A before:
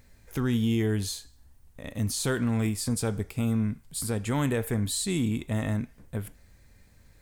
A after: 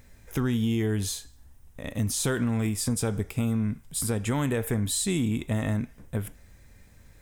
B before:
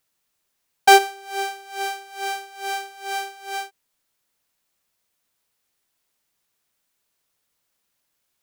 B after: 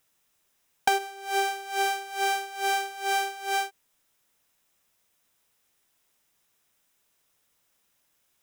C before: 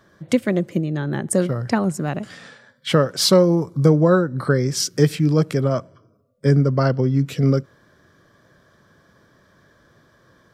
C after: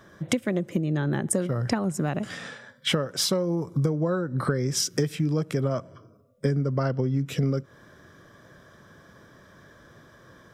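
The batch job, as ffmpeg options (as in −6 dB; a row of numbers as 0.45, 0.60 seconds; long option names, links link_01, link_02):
-af "acompressor=threshold=-25dB:ratio=10,bandreject=frequency=4400:width=8.4,volume=3.5dB"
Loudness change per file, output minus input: +1.0, −5.5, −7.5 LU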